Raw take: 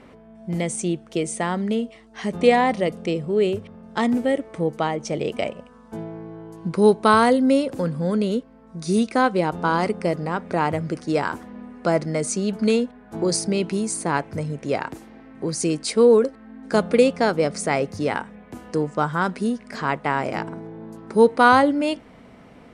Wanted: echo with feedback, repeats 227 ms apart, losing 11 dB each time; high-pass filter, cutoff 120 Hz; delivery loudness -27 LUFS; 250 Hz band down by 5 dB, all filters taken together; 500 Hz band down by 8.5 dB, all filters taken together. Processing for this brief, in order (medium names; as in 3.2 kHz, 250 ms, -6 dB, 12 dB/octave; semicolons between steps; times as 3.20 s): high-pass 120 Hz; peaking EQ 250 Hz -3.5 dB; peaking EQ 500 Hz -9 dB; feedback delay 227 ms, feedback 28%, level -11 dB; trim -1 dB